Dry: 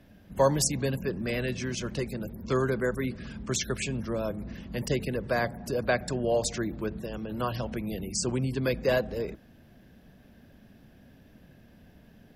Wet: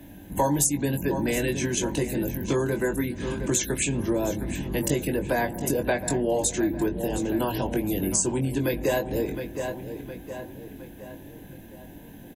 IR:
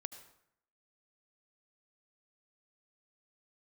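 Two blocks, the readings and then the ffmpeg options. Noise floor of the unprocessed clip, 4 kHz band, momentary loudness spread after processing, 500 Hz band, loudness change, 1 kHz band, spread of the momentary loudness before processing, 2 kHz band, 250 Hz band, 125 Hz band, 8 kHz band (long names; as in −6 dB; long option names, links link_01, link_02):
−56 dBFS, +0.5 dB, 18 LU, +2.5 dB, +4.0 dB, +3.5 dB, 9 LU, +2.0 dB, +6.5 dB, +2.5 dB, +7.5 dB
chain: -filter_complex "[0:a]superequalizer=6b=2.51:9b=1.78:10b=0.398:14b=0.355,asplit=2[link_01][link_02];[link_02]adelay=713,lowpass=frequency=4800:poles=1,volume=-14dB,asplit=2[link_03][link_04];[link_04]adelay=713,lowpass=frequency=4800:poles=1,volume=0.48,asplit=2[link_05][link_06];[link_06]adelay=713,lowpass=frequency=4800:poles=1,volume=0.48,asplit=2[link_07][link_08];[link_08]adelay=713,lowpass=frequency=4800:poles=1,volume=0.48,asplit=2[link_09][link_10];[link_10]adelay=713,lowpass=frequency=4800:poles=1,volume=0.48[link_11];[link_01][link_03][link_05][link_07][link_09][link_11]amix=inputs=6:normalize=0,acrossover=split=230|630|4300[link_12][link_13][link_14][link_15];[link_15]crystalizer=i=2:c=0[link_16];[link_12][link_13][link_14][link_16]amix=inputs=4:normalize=0,acompressor=threshold=-31dB:ratio=3,asplit=2[link_17][link_18];[link_18]adelay=21,volume=-6dB[link_19];[link_17][link_19]amix=inputs=2:normalize=0,volume=7dB"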